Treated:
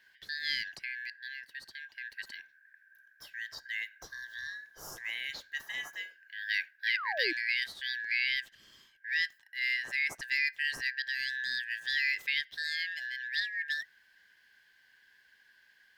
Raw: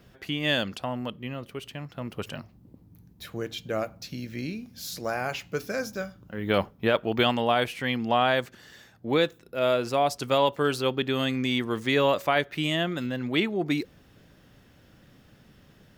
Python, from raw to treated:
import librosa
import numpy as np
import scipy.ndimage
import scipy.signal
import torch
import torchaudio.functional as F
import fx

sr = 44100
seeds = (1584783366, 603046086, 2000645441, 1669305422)

y = fx.band_shuffle(x, sr, order='4123')
y = fx.spec_paint(y, sr, seeds[0], shape='fall', start_s=6.87, length_s=0.46, low_hz=300.0, high_hz=2500.0, level_db=-29.0)
y = y * 10.0 ** (-8.5 / 20.0)